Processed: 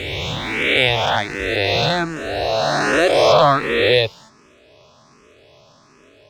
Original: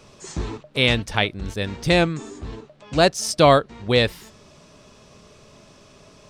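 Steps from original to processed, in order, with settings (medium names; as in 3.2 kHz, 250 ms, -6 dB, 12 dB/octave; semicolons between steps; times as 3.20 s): reverse spectral sustain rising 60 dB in 2.64 s; low-pass 5 kHz 12 dB/octave; peaking EQ 190 Hz -13 dB 0.27 oct; in parallel at -2 dB: compression, threshold -24 dBFS, peak gain reduction 16 dB; on the sum: high-pass 130 Hz 6 dB/octave; waveshaping leveller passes 1; barber-pole phaser +1.3 Hz; trim -3 dB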